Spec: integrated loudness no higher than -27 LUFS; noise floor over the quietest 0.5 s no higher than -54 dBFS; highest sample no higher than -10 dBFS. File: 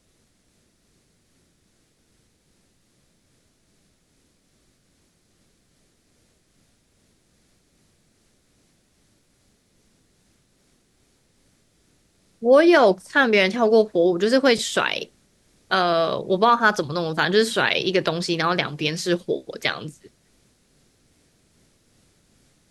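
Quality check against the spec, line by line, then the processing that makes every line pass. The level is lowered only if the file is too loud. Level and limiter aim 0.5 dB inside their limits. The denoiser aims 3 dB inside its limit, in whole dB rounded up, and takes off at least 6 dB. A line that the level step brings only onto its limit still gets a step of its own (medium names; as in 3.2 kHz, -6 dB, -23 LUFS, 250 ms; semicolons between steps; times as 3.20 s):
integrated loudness -20.0 LUFS: fail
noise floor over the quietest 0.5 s -64 dBFS: pass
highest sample -5.0 dBFS: fail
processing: trim -7.5 dB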